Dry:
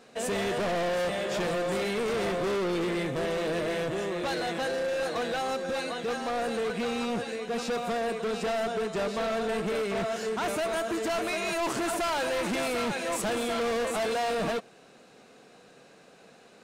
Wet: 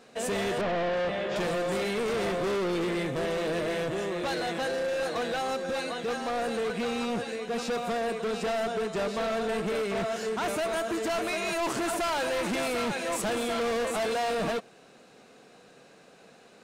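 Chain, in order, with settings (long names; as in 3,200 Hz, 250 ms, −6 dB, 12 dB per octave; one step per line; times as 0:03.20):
0:00.61–0:01.36: low-pass filter 3,600 Hz 12 dB per octave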